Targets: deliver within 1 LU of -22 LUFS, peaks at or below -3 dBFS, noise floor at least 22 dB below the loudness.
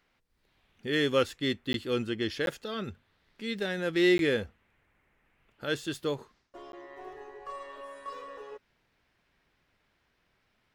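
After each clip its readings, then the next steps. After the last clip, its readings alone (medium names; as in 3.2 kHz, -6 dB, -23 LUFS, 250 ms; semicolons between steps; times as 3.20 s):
dropouts 4; longest dropout 12 ms; loudness -30.5 LUFS; peak level -13.5 dBFS; loudness target -22.0 LUFS
-> interpolate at 1.73/2.46/4.18/6.72 s, 12 ms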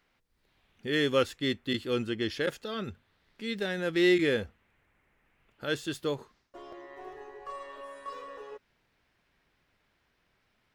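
dropouts 0; loudness -30.5 LUFS; peak level -13.5 dBFS; loudness target -22.0 LUFS
-> trim +8.5 dB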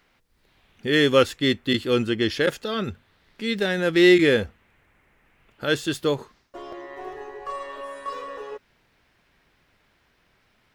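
loudness -22.5 LUFS; peak level -5.0 dBFS; noise floor -65 dBFS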